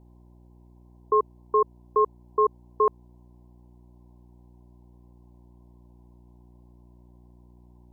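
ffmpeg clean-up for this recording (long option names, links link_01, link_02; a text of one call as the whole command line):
ffmpeg -i in.wav -af "bandreject=frequency=60.1:width_type=h:width=4,bandreject=frequency=120.2:width_type=h:width=4,bandreject=frequency=180.3:width_type=h:width=4,bandreject=frequency=240.4:width_type=h:width=4,bandreject=frequency=300.5:width_type=h:width=4,bandreject=frequency=360.6:width_type=h:width=4,afftdn=noise_reduction=19:noise_floor=-54" out.wav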